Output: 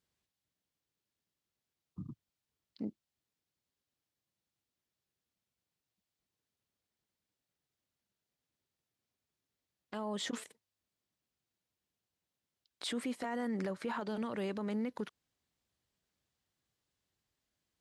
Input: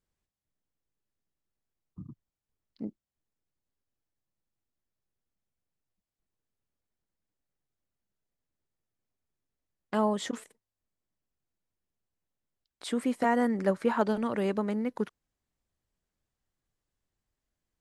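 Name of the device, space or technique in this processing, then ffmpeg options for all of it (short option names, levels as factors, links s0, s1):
broadcast voice chain: -af "highpass=75,deesser=0.85,acompressor=threshold=0.0282:ratio=4,equalizer=f=3800:t=o:w=1.5:g=6,alimiter=level_in=1.78:limit=0.0631:level=0:latency=1:release=22,volume=0.562"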